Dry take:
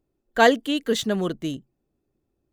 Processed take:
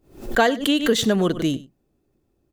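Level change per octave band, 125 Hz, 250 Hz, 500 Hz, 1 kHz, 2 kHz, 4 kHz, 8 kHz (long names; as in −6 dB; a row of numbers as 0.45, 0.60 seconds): +6.0, +4.5, +0.5, −1.0, 0.0, +4.0, +4.5 decibels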